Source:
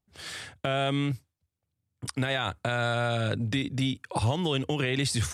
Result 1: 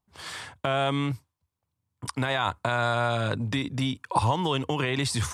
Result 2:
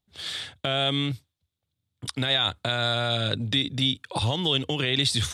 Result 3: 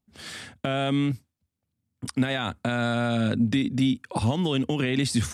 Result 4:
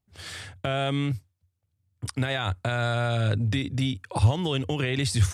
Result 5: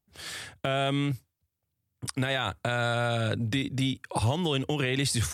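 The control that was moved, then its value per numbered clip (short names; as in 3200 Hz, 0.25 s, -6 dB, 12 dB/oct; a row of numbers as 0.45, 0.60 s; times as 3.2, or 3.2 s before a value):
bell, frequency: 1000, 3600, 230, 92, 16000 Hz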